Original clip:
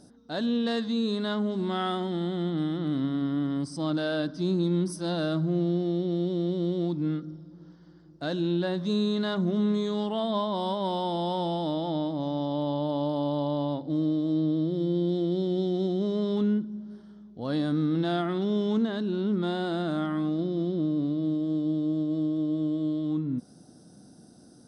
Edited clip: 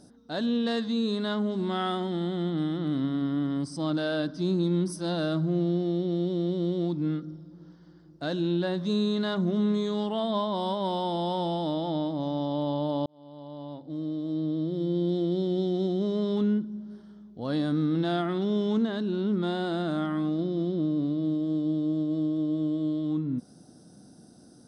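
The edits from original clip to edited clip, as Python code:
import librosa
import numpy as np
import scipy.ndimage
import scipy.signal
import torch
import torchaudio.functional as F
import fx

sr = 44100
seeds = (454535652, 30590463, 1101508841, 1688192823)

y = fx.edit(x, sr, fx.fade_in_span(start_s=13.06, length_s=2.06), tone=tone)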